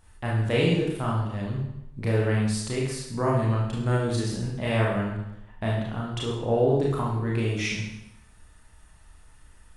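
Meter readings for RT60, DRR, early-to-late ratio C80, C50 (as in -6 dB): 0.80 s, -4.5 dB, 5.5 dB, 2.0 dB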